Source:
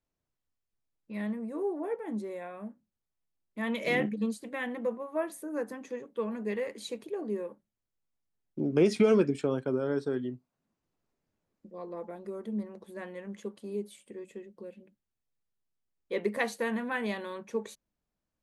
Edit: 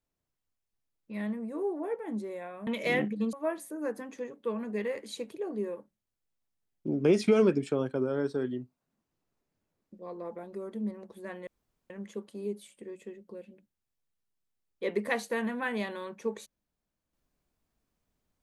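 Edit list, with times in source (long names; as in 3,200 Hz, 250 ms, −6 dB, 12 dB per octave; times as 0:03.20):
0:02.67–0:03.68: remove
0:04.34–0:05.05: remove
0:13.19: splice in room tone 0.43 s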